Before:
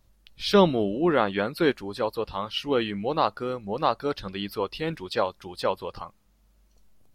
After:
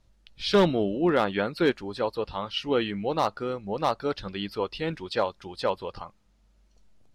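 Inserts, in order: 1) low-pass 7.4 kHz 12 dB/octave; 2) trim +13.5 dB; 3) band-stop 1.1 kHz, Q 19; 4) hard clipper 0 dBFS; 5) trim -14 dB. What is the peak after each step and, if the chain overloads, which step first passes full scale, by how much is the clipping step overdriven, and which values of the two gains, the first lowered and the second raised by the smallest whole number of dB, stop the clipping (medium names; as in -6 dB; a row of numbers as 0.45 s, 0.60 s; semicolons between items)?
-6.5 dBFS, +7.0 dBFS, +7.5 dBFS, 0.0 dBFS, -14.0 dBFS; step 2, 7.5 dB; step 2 +5.5 dB, step 5 -6 dB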